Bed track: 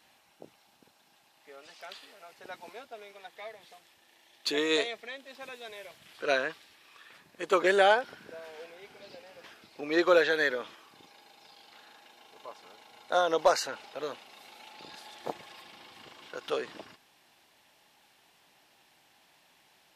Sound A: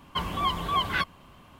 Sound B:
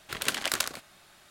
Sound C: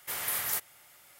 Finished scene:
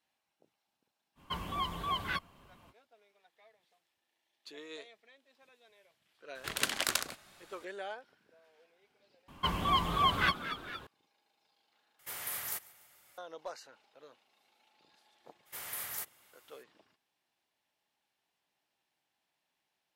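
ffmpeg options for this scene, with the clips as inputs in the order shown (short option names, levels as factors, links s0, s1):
-filter_complex "[1:a]asplit=2[s0][s1];[3:a]asplit=2[s2][s3];[0:a]volume=0.1[s4];[s0]highshelf=f=9000:g=3.5[s5];[s1]asplit=7[s6][s7][s8][s9][s10][s11][s12];[s7]adelay=230,afreqshift=100,volume=0.251[s13];[s8]adelay=460,afreqshift=200,volume=0.143[s14];[s9]adelay=690,afreqshift=300,volume=0.0813[s15];[s10]adelay=920,afreqshift=400,volume=0.0468[s16];[s11]adelay=1150,afreqshift=500,volume=0.0266[s17];[s12]adelay=1380,afreqshift=600,volume=0.0151[s18];[s6][s13][s14][s15][s16][s17][s18]amix=inputs=7:normalize=0[s19];[s2]aecho=1:1:145|290|435|580:0.0794|0.0413|0.0215|0.0112[s20];[s4]asplit=3[s21][s22][s23];[s21]atrim=end=9.284[s24];[s19]atrim=end=1.59,asetpts=PTS-STARTPTS,volume=0.794[s25];[s22]atrim=start=10.866:end=11.994[s26];[s20]atrim=end=1.19,asetpts=PTS-STARTPTS,volume=0.447[s27];[s23]atrim=start=13.176[s28];[s5]atrim=end=1.59,asetpts=PTS-STARTPTS,volume=0.376,afade=t=in:d=0.05,afade=t=out:st=1.54:d=0.05,adelay=1150[s29];[2:a]atrim=end=1.3,asetpts=PTS-STARTPTS,volume=0.708,afade=t=in:d=0.004:c=hsin,afade=t=out:st=1.296:d=0.004:c=hsin,adelay=6350[s30];[s3]atrim=end=1.19,asetpts=PTS-STARTPTS,volume=0.376,afade=t=in:d=0.02,afade=t=out:st=1.17:d=0.02,adelay=15450[s31];[s24][s25]acrossfade=d=0.004:c1=hsin:c2=hsin[s32];[s32][s26]acrossfade=d=0.004:c1=hsin:c2=hsin[s33];[s33][s27]acrossfade=d=0.004:c1=hsin:c2=hsin[s34];[s34][s28]acrossfade=d=0.004:c1=hsin:c2=hsin[s35];[s35][s29][s30][s31]amix=inputs=4:normalize=0"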